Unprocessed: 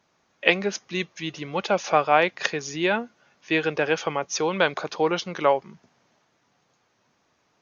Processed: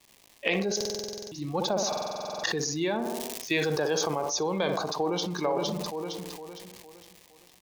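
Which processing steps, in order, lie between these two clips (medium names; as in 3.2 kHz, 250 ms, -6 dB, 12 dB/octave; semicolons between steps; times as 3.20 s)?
spectral noise reduction 18 dB; crackle 360 per s -42 dBFS; peaking EQ 1.4 kHz -14 dB 0.3 oct; 4.88–5.31 s: echo throw 460 ms, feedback 40%, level -6 dB; compression, threshold -26 dBFS, peak gain reduction 12.5 dB; 3.01–4.22 s: treble shelf 2.9 kHz +8.5 dB; tape echo 60 ms, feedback 71%, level -10.5 dB, low-pass 1.5 kHz; buffer glitch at 0.76/1.88 s, samples 2048, times 11; decay stretcher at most 23 dB/s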